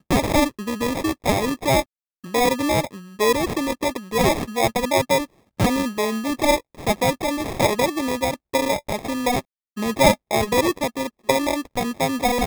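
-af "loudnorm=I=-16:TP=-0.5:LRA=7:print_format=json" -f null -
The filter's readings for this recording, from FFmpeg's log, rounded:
"input_i" : "-21.8",
"input_tp" : "-1.9",
"input_lra" : "0.9",
"input_thresh" : "-31.9",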